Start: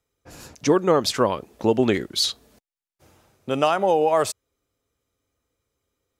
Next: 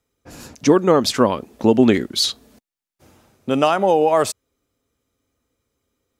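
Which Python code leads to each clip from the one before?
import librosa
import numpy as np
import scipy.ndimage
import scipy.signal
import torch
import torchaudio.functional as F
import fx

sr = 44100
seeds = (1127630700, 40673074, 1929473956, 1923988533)

y = fx.peak_eq(x, sr, hz=240.0, db=6.5, octaves=0.59)
y = y * 10.0 ** (3.0 / 20.0)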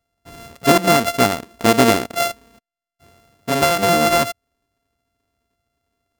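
y = np.r_[np.sort(x[:len(x) // 64 * 64].reshape(-1, 64), axis=1).ravel(), x[len(x) // 64 * 64:]]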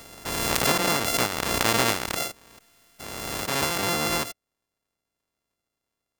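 y = fx.spec_clip(x, sr, under_db=17)
y = fx.pre_swell(y, sr, db_per_s=25.0)
y = y * 10.0 ** (-10.5 / 20.0)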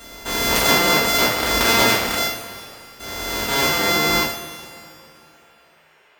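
y = fx.dmg_noise_band(x, sr, seeds[0], low_hz=370.0, high_hz=2700.0, level_db=-62.0)
y = fx.rev_double_slope(y, sr, seeds[1], early_s=0.41, late_s=2.9, knee_db=-18, drr_db=-6.0)
y = y * 10.0 ** (-1.0 / 20.0)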